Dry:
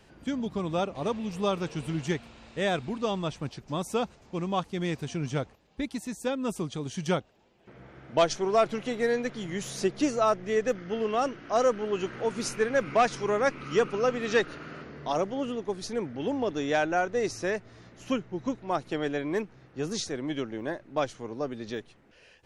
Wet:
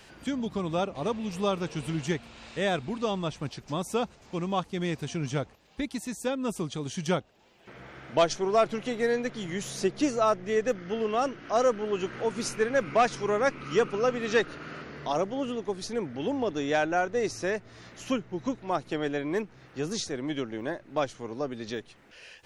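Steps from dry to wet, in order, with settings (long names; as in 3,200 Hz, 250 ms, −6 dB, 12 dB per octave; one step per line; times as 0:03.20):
one half of a high-frequency compander encoder only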